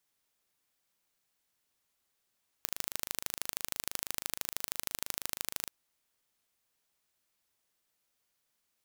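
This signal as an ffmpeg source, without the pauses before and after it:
-f lavfi -i "aevalsrc='0.562*eq(mod(n,1690),0)*(0.5+0.5*eq(mod(n,3380),0))':d=3.04:s=44100"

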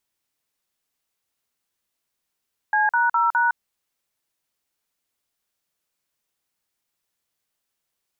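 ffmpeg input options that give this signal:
-f lavfi -i "aevalsrc='0.112*clip(min(mod(t,0.206),0.161-mod(t,0.206))/0.002,0,1)*(eq(floor(t/0.206),0)*(sin(2*PI*852*mod(t,0.206))+sin(2*PI*1633*mod(t,0.206)))+eq(floor(t/0.206),1)*(sin(2*PI*941*mod(t,0.206))+sin(2*PI*1477*mod(t,0.206)))+eq(floor(t/0.206),2)*(sin(2*PI*941*mod(t,0.206))+sin(2*PI*1336*mod(t,0.206)))+eq(floor(t/0.206),3)*(sin(2*PI*941*mod(t,0.206))+sin(2*PI*1477*mod(t,0.206))))':d=0.824:s=44100"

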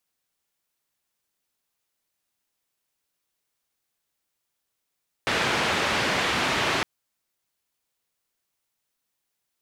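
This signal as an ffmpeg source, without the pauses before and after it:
-f lavfi -i "anoisesrc=c=white:d=1.56:r=44100:seed=1,highpass=f=82,lowpass=f=2600,volume=-10.7dB"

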